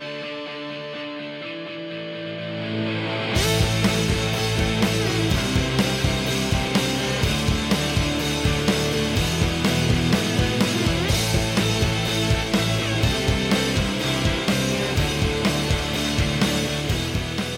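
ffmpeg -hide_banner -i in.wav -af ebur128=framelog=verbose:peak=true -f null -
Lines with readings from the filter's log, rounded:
Integrated loudness:
  I:         -22.1 LUFS
  Threshold: -32.1 LUFS
Loudness range:
  LRA:         2.8 LU
  Threshold: -41.7 LUFS
  LRA low:   -23.7 LUFS
  LRA high:  -20.9 LUFS
True peak:
  Peak:       -8.9 dBFS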